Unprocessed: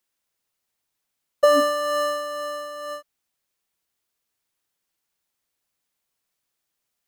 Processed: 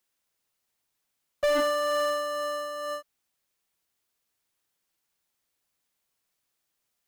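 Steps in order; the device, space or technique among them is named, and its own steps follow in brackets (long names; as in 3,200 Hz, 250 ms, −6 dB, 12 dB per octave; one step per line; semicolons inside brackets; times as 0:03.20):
saturation between pre-emphasis and de-emphasis (high-shelf EQ 4,300 Hz +7.5 dB; soft clipping −21 dBFS, distortion −7 dB; high-shelf EQ 4,300 Hz −7.5 dB)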